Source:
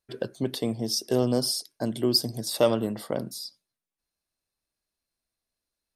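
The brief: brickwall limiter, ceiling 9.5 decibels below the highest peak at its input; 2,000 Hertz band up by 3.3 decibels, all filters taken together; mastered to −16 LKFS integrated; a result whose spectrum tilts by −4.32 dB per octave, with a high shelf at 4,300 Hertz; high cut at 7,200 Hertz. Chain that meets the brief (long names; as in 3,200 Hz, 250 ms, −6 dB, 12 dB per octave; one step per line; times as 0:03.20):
low-pass filter 7,200 Hz
parametric band 2,000 Hz +4 dB
high-shelf EQ 4,300 Hz +3 dB
level +13.5 dB
brickwall limiter −4 dBFS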